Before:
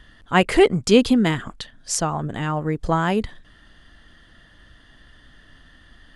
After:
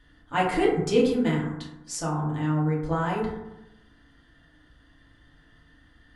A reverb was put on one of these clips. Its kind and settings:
feedback delay network reverb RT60 0.93 s, low-frequency decay 1.2×, high-frequency decay 0.35×, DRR −5 dB
level −13 dB

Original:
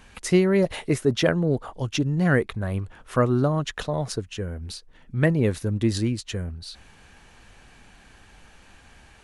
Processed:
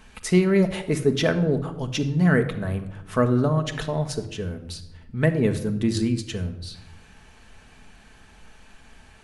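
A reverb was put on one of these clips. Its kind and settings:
rectangular room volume 3,200 cubic metres, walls furnished, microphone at 1.5 metres
level −1 dB

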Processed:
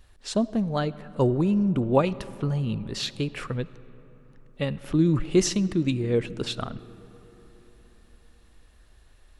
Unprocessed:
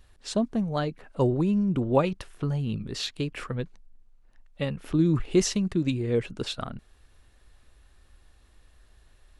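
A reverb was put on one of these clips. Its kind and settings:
comb and all-pass reverb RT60 4.1 s, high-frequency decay 0.4×, pre-delay 30 ms, DRR 17.5 dB
level +1.5 dB

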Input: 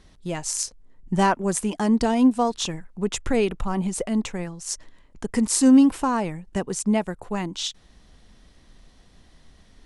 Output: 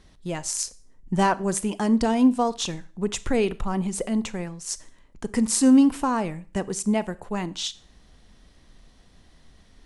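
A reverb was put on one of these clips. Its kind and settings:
four-comb reverb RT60 0.41 s, combs from 28 ms, DRR 17 dB
level −1 dB

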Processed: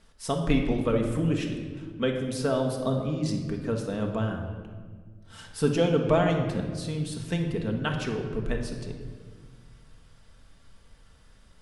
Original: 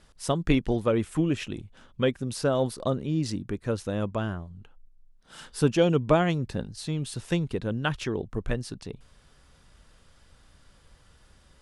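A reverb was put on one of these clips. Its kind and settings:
rectangular room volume 1,900 cubic metres, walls mixed, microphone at 1.6 metres
level −3 dB

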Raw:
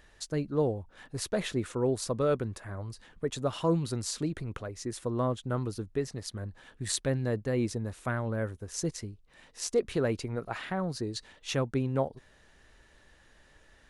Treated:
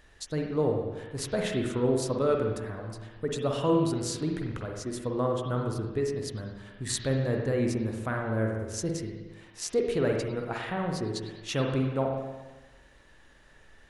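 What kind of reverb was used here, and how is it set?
spring reverb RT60 1.2 s, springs 45/57 ms, chirp 60 ms, DRR 1 dB

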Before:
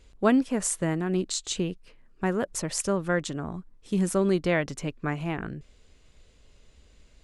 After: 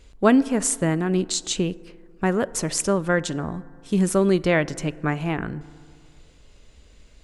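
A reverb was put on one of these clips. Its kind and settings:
feedback delay network reverb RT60 2.2 s, low-frequency decay 0.95×, high-frequency decay 0.3×, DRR 18 dB
level +5 dB

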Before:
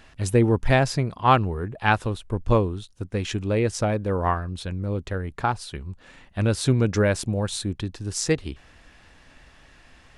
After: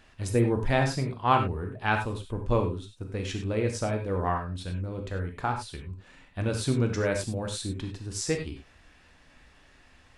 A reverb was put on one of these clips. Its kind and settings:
reverb whose tail is shaped and stops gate 120 ms flat, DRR 3 dB
level −6.5 dB

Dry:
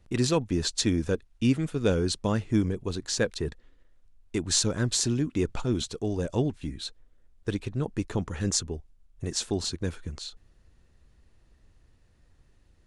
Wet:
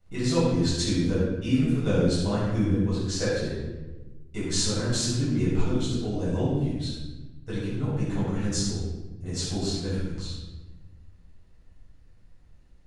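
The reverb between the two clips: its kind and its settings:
rectangular room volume 680 cubic metres, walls mixed, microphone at 7.1 metres
level −13 dB

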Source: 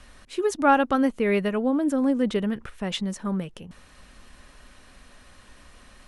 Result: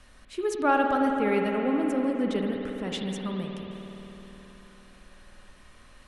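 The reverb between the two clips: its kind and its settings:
spring reverb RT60 3.9 s, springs 52 ms, chirp 30 ms, DRR 1.5 dB
level −5 dB

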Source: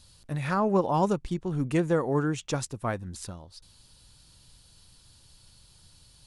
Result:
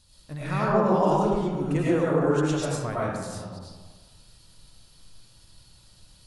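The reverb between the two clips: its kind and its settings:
comb and all-pass reverb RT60 1.4 s, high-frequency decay 0.5×, pre-delay 60 ms, DRR −7.5 dB
level −5 dB

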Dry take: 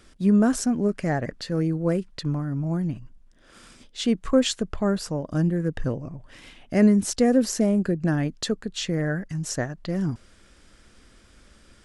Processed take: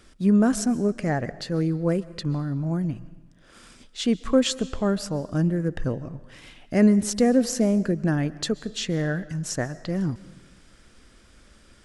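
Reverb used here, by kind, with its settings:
comb and all-pass reverb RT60 1.1 s, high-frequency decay 0.9×, pre-delay 95 ms, DRR 18 dB

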